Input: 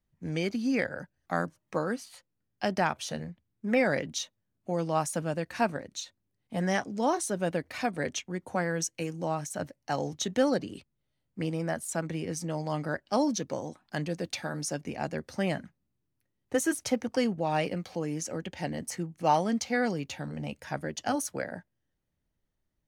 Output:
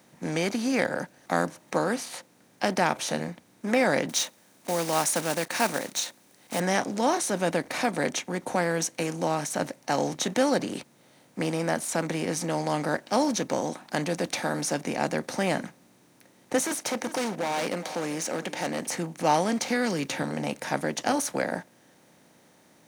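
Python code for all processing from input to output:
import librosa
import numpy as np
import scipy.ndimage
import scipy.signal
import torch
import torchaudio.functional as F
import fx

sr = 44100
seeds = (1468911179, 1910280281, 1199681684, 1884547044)

y = fx.chain(x, sr, fx.block_float(bits=5),
    fx.tilt_eq(slope=2.5), at=(4.09, 6.6))
y = fx.chain(y, sr, fx.highpass(hz=360.0, slope=6),
    fx.overload_stage(gain_db=31.5),
    fx.echo_single(ms=399, db=-21.5), at=(16.64, 18.87))
y = fx.chain(y, sr, fx.peak_eq(hz=760.0, db=-12.0, octaves=0.75),
    fx.band_squash(depth_pct=70), at=(19.68, 20.23))
y = fx.bin_compress(y, sr, power=0.6)
y = scipy.signal.sosfilt(scipy.signal.butter(2, 140.0, 'highpass', fs=sr, output='sos'), y)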